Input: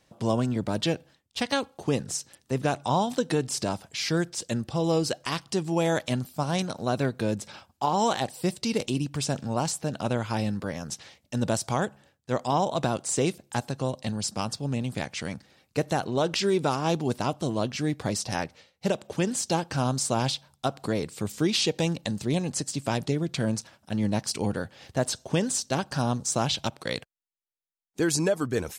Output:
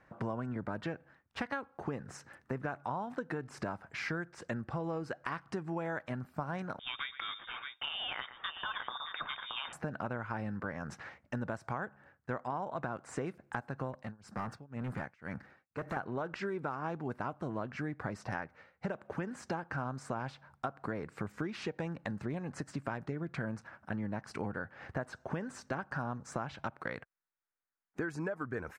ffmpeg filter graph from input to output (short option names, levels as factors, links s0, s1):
-filter_complex "[0:a]asettb=1/sr,asplit=3[s0][s1][s2];[s0]atrim=end=6.794[s3];[s1]atrim=start=6.79:end=9.73,asetpts=PTS-STARTPTS,afade=t=in:d=0.004:c=qsin,afade=t=out:st=2.936:d=0.004:c=qsin,aecho=1:1:117|624:0.133|0.299,atrim=end_sample=129654,lowpass=f=3200:t=q:w=0.5098,lowpass=f=3200:t=q:w=0.6013,lowpass=f=3200:t=q:w=0.9,lowpass=f=3200:t=q:w=2.563,afreqshift=-3800[s4];[s2]atrim=start=9.726[s5];[s3][s4]acrossfade=d=0.004:c1=hsin:c2=qsin[s6];[s6][s5]acrossfade=d=0.004:c1=qsin:c2=hsin,asettb=1/sr,asplit=3[s7][s8][s9];[s7]atrim=end=13.934[s10];[s8]atrim=start=13.93:end=15.97,asetpts=PTS-STARTPTS,afade=t=in:d=0.004:c=qsin,afade=t=out:st=2.036:d=0.004:c=qsin,highshelf=f=11000:g=4.5,tremolo=f=2:d=0.98,volume=39.8,asoftclip=hard,volume=0.0251[s11];[s9]atrim=start=15.966[s12];[s10][s11]acrossfade=d=0.004:c1=hsin:c2=qsin[s13];[s13][s12]acrossfade=d=0.004:c1=qsin:c2=hsin,firequalizer=gain_entry='entry(500,0);entry(1500,10);entry(3300,-15);entry(9200,-20)':delay=0.05:min_phase=1,acompressor=threshold=0.0178:ratio=6"